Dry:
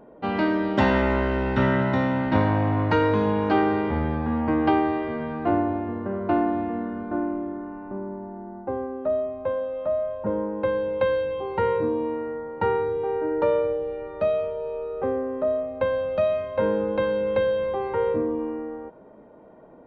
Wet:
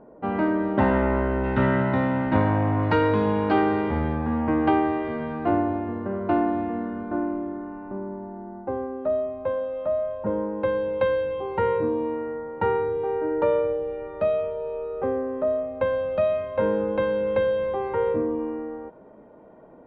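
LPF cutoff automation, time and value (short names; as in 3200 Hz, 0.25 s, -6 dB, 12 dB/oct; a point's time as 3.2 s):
1600 Hz
from 1.44 s 2600 Hz
from 2.83 s 4700 Hz
from 4.13 s 3200 Hz
from 5.05 s 4900 Hz
from 11.07 s 3400 Hz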